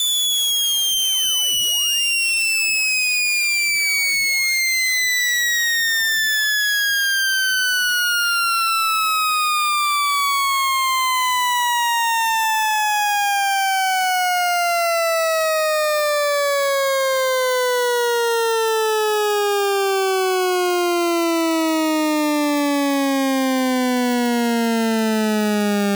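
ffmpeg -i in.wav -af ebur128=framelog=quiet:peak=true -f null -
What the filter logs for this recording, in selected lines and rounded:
Integrated loudness:
  I:         -17.3 LUFS
  Threshold: -27.3 LUFS
Loudness range:
  LRA:         2.9 LU
  Threshold: -37.3 LUFS
  LRA low:   -18.7 LUFS
  LRA high:  -15.8 LUFS
True peak:
  Peak:      -12.8 dBFS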